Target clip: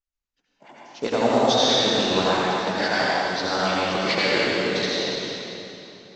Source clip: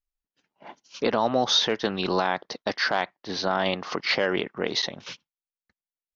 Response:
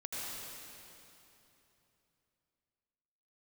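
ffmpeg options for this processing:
-filter_complex "[0:a]acrossover=split=1600[link_01][link_02];[link_01]aeval=exprs='val(0)*(1-0.7/2+0.7/2*cos(2*PI*9.6*n/s))':channel_layout=same[link_03];[link_02]aeval=exprs='val(0)*(1-0.7/2-0.7/2*cos(2*PI*9.6*n/s))':channel_layout=same[link_04];[link_03][link_04]amix=inputs=2:normalize=0,aresample=16000,acrusher=bits=5:mode=log:mix=0:aa=0.000001,aresample=44100[link_05];[1:a]atrim=start_sample=2205[link_06];[link_05][link_06]afir=irnorm=-1:irlink=0,volume=5.5dB"

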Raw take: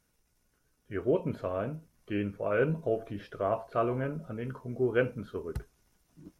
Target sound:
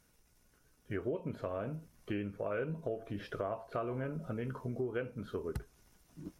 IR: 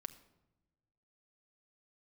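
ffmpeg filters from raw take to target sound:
-af "acompressor=threshold=-39dB:ratio=5,volume=4dB"

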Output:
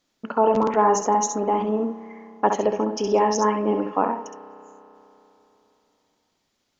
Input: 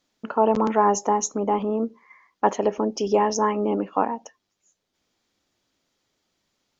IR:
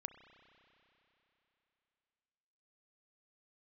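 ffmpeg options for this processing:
-filter_complex "[0:a]asplit=2[link_01][link_02];[1:a]atrim=start_sample=2205,adelay=66[link_03];[link_02][link_03]afir=irnorm=-1:irlink=0,volume=-1.5dB[link_04];[link_01][link_04]amix=inputs=2:normalize=0"

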